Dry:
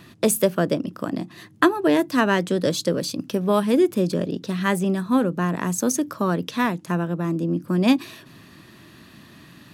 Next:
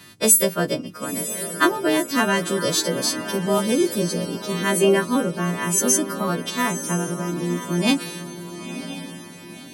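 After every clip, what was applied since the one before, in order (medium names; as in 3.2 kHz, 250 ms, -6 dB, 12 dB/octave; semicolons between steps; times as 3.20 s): partials quantised in pitch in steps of 2 st; time-frequency box 4.80–5.05 s, 250–3200 Hz +12 dB; echo that smears into a reverb 993 ms, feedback 41%, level -10.5 dB; trim -1 dB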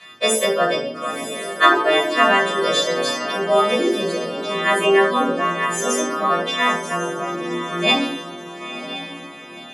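band-pass 460–5000 Hz; simulated room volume 680 m³, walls furnished, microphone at 5.9 m; trim -1 dB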